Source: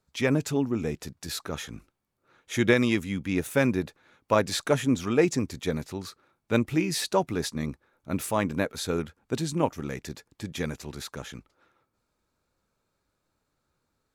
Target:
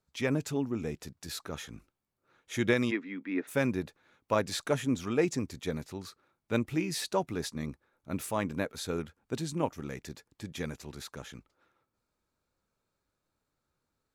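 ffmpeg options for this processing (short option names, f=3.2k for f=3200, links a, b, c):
-filter_complex "[0:a]asplit=3[a][b][c];[a]afade=t=out:st=2.9:d=0.02[d];[b]highpass=f=260:w=0.5412,highpass=f=260:w=1.3066,equalizer=f=270:t=q:w=4:g=5,equalizer=f=540:t=q:w=4:g=-4,equalizer=f=790:t=q:w=4:g=-4,equalizer=f=1.9k:t=q:w=4:g=5,equalizer=f=3k:t=q:w=4:g=-9,lowpass=f=3.2k:w=0.5412,lowpass=f=3.2k:w=1.3066,afade=t=in:st=2.9:d=0.02,afade=t=out:st=3.47:d=0.02[e];[c]afade=t=in:st=3.47:d=0.02[f];[d][e][f]amix=inputs=3:normalize=0,volume=-5.5dB"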